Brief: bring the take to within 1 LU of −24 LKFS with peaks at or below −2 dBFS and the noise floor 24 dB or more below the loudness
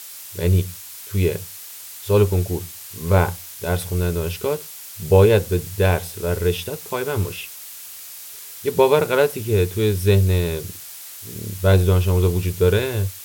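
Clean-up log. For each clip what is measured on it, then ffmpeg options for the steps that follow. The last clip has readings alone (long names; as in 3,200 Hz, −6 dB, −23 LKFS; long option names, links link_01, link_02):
background noise floor −38 dBFS; target noise floor −45 dBFS; integrated loudness −20.5 LKFS; sample peak −2.0 dBFS; target loudness −24.0 LKFS
→ -af "afftdn=noise_reduction=7:noise_floor=-38"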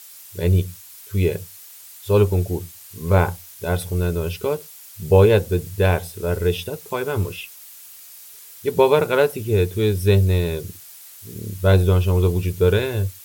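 background noise floor −43 dBFS; target noise floor −45 dBFS
→ -af "afftdn=noise_reduction=6:noise_floor=-43"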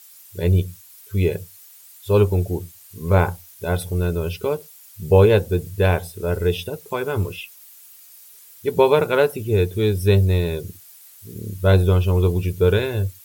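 background noise floor −46 dBFS; integrated loudness −20.5 LKFS; sample peak −2.0 dBFS; target loudness −24.0 LKFS
→ -af "volume=-3.5dB"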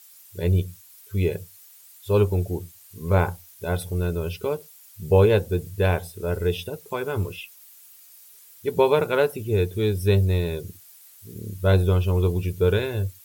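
integrated loudness −24.0 LKFS; sample peak −5.5 dBFS; background noise floor −50 dBFS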